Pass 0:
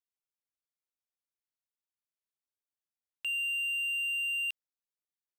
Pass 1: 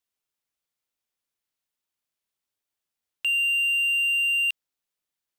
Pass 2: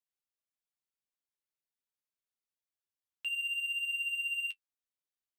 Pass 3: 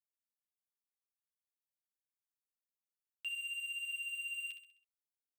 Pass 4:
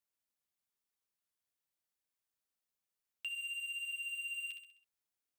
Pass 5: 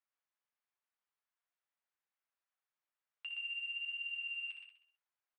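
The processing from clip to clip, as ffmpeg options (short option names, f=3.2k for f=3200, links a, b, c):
-af "equalizer=f=3.1k:t=o:w=0.77:g=2,volume=7.5dB"
-af "flanger=delay=6.7:depth=5.6:regen=37:speed=0.51:shape=triangular,volume=-8dB"
-filter_complex "[0:a]acrossover=split=6900[a][b];[a]aeval=exprs='val(0)*gte(abs(val(0)),0.00501)':c=same[c];[c][b]amix=inputs=2:normalize=0,aecho=1:1:65|130|195|260|325:0.355|0.163|0.0751|0.0345|0.0159,volume=-4.5dB"
-af "acompressor=threshold=-42dB:ratio=6,volume=3.5dB"
-filter_complex "[0:a]flanger=delay=4.7:depth=6:regen=-53:speed=1.2:shape=triangular,highpass=800,lowpass=2k,asplit=2[a][b];[b]aecho=0:1:61.22|119.5:0.316|0.562[c];[a][c]amix=inputs=2:normalize=0,volume=7dB"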